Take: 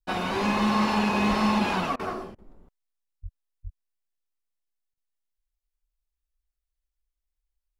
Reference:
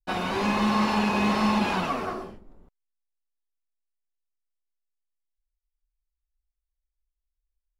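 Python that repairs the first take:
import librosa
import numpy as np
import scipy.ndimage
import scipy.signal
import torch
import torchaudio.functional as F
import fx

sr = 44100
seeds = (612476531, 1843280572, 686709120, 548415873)

y = fx.highpass(x, sr, hz=140.0, slope=24, at=(1.29, 1.41), fade=0.02)
y = fx.highpass(y, sr, hz=140.0, slope=24, at=(3.22, 3.34), fade=0.02)
y = fx.highpass(y, sr, hz=140.0, slope=24, at=(3.63, 3.75), fade=0.02)
y = fx.fix_interpolate(y, sr, at_s=(1.96, 2.35, 4.94), length_ms=33.0)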